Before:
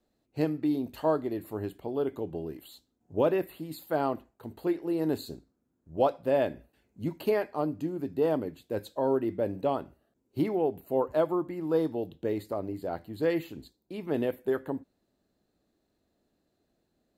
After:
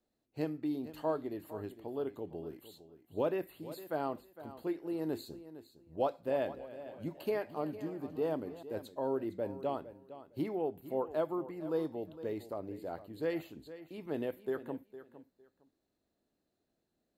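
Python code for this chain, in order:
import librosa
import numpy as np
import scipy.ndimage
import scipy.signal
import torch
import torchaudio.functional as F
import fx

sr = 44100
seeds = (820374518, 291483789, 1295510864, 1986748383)

y = fx.low_shelf(x, sr, hz=160.0, db=-3.0)
y = fx.echo_feedback(y, sr, ms=458, feedback_pct=19, wet_db=-14.5)
y = fx.echo_warbled(y, sr, ms=291, feedback_pct=61, rate_hz=2.8, cents=103, wet_db=-16.5, at=(5.95, 8.63))
y = F.gain(torch.from_numpy(y), -7.0).numpy()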